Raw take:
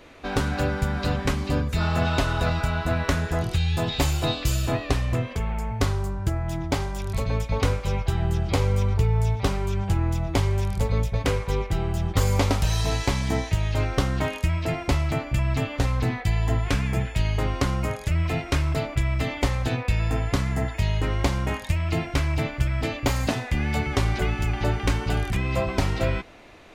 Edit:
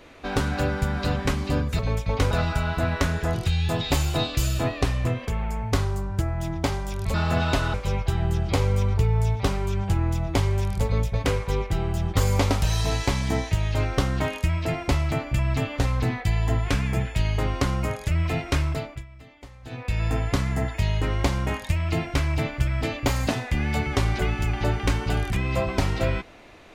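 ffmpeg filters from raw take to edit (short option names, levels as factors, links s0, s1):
-filter_complex "[0:a]asplit=7[s0][s1][s2][s3][s4][s5][s6];[s0]atrim=end=1.792[s7];[s1]atrim=start=7.218:end=7.742[s8];[s2]atrim=start=2.388:end=7.222[s9];[s3]atrim=start=1.788:end=2.392[s10];[s4]atrim=start=7.738:end=19.06,asetpts=PTS-STARTPTS,afade=t=out:st=10.882:d=0.44:silence=0.0841395[s11];[s5]atrim=start=19.06:end=19.62,asetpts=PTS-STARTPTS,volume=0.0841[s12];[s6]atrim=start=19.62,asetpts=PTS-STARTPTS,afade=t=in:d=0.44:silence=0.0841395[s13];[s7][s8]acrossfade=d=0.004:c1=hsin:c2=hsin[s14];[s14][s9]acrossfade=d=0.004:c1=hsin:c2=hsin[s15];[s15][s10]acrossfade=d=0.004:c1=hsin:c2=hsin[s16];[s11][s12][s13]concat=n=3:v=0:a=1[s17];[s16][s17]acrossfade=d=0.004:c1=hsin:c2=hsin"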